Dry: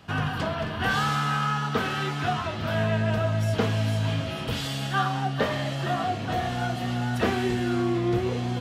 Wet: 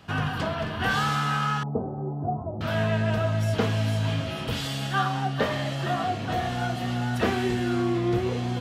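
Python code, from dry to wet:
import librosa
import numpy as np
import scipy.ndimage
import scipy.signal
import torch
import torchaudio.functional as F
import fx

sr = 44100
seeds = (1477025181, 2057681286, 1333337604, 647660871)

y = fx.steep_lowpass(x, sr, hz=790.0, slope=36, at=(1.63, 2.61))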